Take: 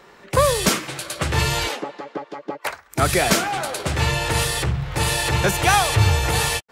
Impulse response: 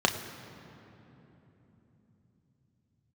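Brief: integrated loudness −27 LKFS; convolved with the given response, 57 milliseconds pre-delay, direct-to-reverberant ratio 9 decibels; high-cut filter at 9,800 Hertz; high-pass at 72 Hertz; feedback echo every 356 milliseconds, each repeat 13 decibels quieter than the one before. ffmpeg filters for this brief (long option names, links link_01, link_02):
-filter_complex "[0:a]highpass=72,lowpass=9800,aecho=1:1:356|712|1068:0.224|0.0493|0.0108,asplit=2[link_01][link_02];[1:a]atrim=start_sample=2205,adelay=57[link_03];[link_02][link_03]afir=irnorm=-1:irlink=0,volume=-22dB[link_04];[link_01][link_04]amix=inputs=2:normalize=0,volume=-6.5dB"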